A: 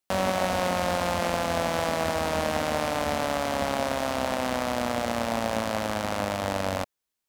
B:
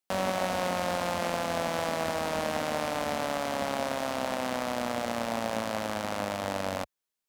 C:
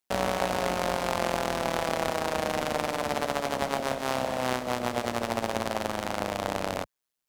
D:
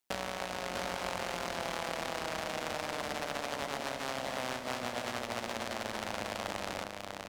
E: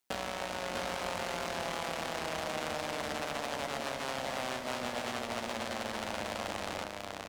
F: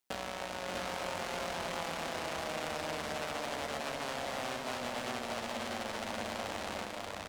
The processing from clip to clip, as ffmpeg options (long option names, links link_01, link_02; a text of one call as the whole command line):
ffmpeg -i in.wav -af "equalizer=frequency=66:width=2.1:gain=-13,volume=-3.5dB" out.wav
ffmpeg -i in.wav -af "tremolo=f=130:d=0.919,volume=5.5dB" out.wav
ffmpeg -i in.wav -filter_complex "[0:a]acrossover=split=1300|7700[link_01][link_02][link_03];[link_01]acompressor=threshold=-39dB:ratio=4[link_04];[link_02]acompressor=threshold=-38dB:ratio=4[link_05];[link_03]acompressor=threshold=-55dB:ratio=4[link_06];[link_04][link_05][link_06]amix=inputs=3:normalize=0,aecho=1:1:646:0.668" out.wav
ffmpeg -i in.wav -filter_complex "[0:a]asoftclip=type=tanh:threshold=-26dB,asplit=2[link_01][link_02];[link_02]adelay=13,volume=-11.5dB[link_03];[link_01][link_03]amix=inputs=2:normalize=0,volume=1.5dB" out.wav
ffmpeg -i in.wav -af "aecho=1:1:583:0.562,volume=-2.5dB" out.wav